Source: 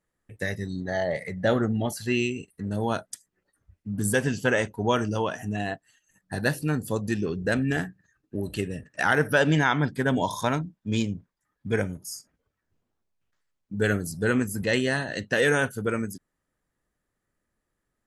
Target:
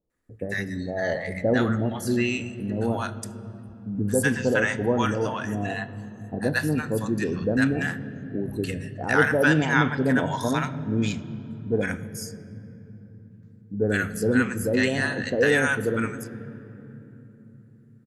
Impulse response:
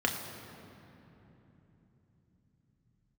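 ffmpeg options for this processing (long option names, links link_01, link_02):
-filter_complex "[0:a]acrossover=split=760[link_01][link_02];[link_02]adelay=100[link_03];[link_01][link_03]amix=inputs=2:normalize=0,asplit=2[link_04][link_05];[1:a]atrim=start_sample=2205,lowpass=5800[link_06];[link_05][link_06]afir=irnorm=-1:irlink=0,volume=-15.5dB[link_07];[link_04][link_07]amix=inputs=2:normalize=0"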